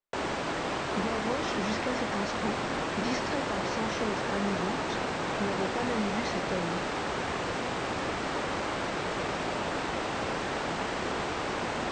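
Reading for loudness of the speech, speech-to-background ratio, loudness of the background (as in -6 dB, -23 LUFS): -36.0 LUFS, -4.0 dB, -32.0 LUFS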